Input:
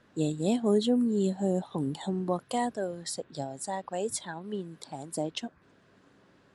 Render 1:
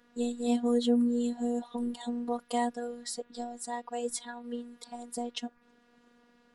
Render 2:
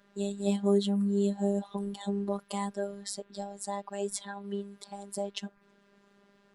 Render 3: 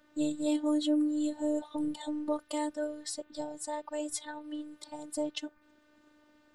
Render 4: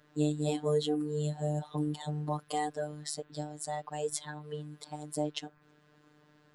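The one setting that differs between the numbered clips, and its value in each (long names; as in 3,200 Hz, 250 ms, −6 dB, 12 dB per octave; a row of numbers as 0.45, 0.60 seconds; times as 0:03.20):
phases set to zero, frequency: 240, 200, 300, 150 Hertz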